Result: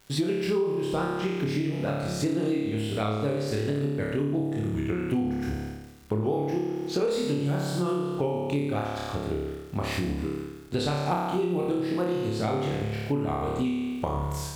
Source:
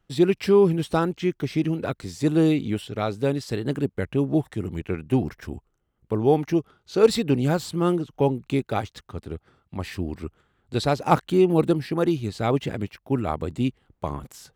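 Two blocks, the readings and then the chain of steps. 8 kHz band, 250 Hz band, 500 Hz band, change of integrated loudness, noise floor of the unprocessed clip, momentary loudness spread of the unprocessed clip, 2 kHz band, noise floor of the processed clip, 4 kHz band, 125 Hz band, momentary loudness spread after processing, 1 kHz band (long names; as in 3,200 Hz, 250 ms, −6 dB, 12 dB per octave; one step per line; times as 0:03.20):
−0.5 dB, −3.5 dB, −5.0 dB, −4.5 dB, −72 dBFS, 15 LU, −2.0 dB, −40 dBFS, −1.5 dB, −2.5 dB, 5 LU, −3.5 dB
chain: pitch vibrato 8.1 Hz 90 cents
surface crackle 140 per second −45 dBFS
on a send: flutter between parallel walls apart 4.8 metres, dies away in 1 s
on the sum: downward compressor 6 to 1, threshold −28 dBFS, peak gain reduction 19.5 dB
level +3 dB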